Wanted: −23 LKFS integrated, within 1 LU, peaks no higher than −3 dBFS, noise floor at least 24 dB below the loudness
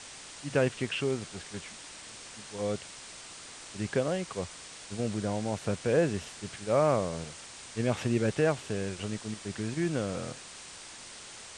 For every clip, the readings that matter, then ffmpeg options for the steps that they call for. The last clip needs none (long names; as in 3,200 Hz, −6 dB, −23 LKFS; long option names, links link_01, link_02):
background noise floor −47 dBFS; target noise floor −56 dBFS; integrated loudness −32.0 LKFS; sample peak −13.0 dBFS; target loudness −23.0 LKFS
→ -af "afftdn=noise_reduction=9:noise_floor=-47"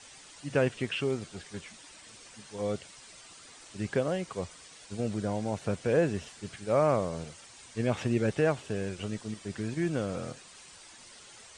background noise floor −52 dBFS; target noise floor −56 dBFS
→ -af "afftdn=noise_reduction=6:noise_floor=-52"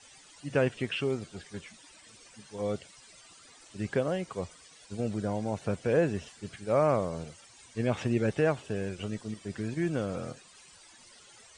background noise floor −56 dBFS; integrated loudness −31.5 LKFS; sample peak −13.0 dBFS; target loudness −23.0 LKFS
→ -af "volume=8.5dB"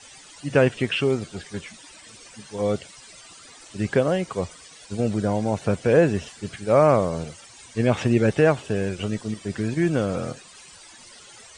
integrated loudness −23.0 LKFS; sample peak −4.5 dBFS; background noise floor −47 dBFS